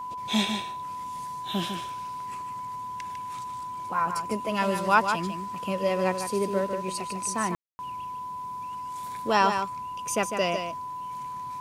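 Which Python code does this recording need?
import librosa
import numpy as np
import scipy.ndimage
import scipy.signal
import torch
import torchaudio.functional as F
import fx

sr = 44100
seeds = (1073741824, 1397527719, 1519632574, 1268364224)

y = fx.notch(x, sr, hz=1000.0, q=30.0)
y = fx.fix_ambience(y, sr, seeds[0], print_start_s=10.86, print_end_s=11.36, start_s=7.55, end_s=7.79)
y = fx.fix_echo_inverse(y, sr, delay_ms=151, level_db=-7.0)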